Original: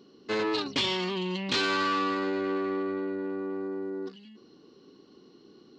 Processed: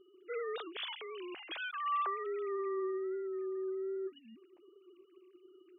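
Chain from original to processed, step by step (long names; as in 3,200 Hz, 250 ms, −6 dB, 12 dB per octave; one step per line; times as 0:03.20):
three sine waves on the formant tracks
level −8 dB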